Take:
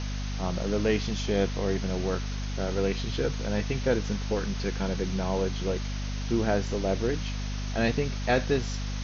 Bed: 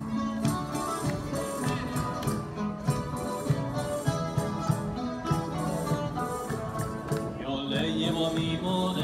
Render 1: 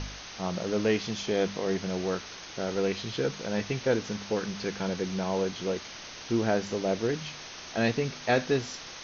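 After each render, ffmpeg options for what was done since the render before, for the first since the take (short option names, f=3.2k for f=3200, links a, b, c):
-af "bandreject=f=50:t=h:w=4,bandreject=f=100:t=h:w=4,bandreject=f=150:t=h:w=4,bandreject=f=200:t=h:w=4,bandreject=f=250:t=h:w=4"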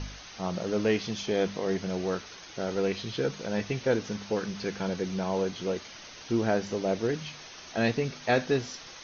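-af "afftdn=nr=6:nf=-44"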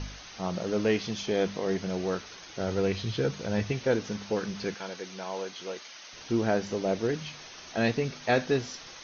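-filter_complex "[0:a]asettb=1/sr,asplit=3[a][b][c];[a]atrim=end=2.604[d];[b]atrim=start=2.6:end=3.72,asetpts=PTS-STARTPTS,afade=t=in:d=0.004:c=qsin,afade=t=out:st=1.116:d=0.004:c=qsin,equalizer=f=91:w=1.5:g=11.5[e];[c]atrim=start=3.716[f];[d][e]acrossfade=d=0.004:c1=hsin:c2=qsin[g];[g][f]acrossfade=d=0.004:c1=qsin:c2=hsin,asettb=1/sr,asplit=3[h][i][j];[h]atrim=end=4.744[k];[i]atrim=start=4.74:end=6.13,asetpts=PTS-STARTPTS,afade=t=in:d=0.004:c=qsin,afade=t=out:st=1.386:d=0.004:c=qsin,highpass=f=890:p=1[l];[j]atrim=start=6.126[m];[k][l]acrossfade=d=0.004:c1=hsin:c2=qsin[n];[n][m]acrossfade=d=0.004:c1=qsin:c2=hsin"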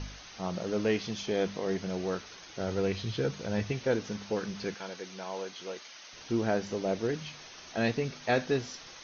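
-af "volume=-2.5dB"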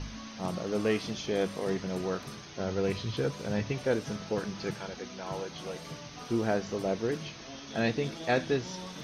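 -filter_complex "[1:a]volume=-15dB[a];[0:a][a]amix=inputs=2:normalize=0"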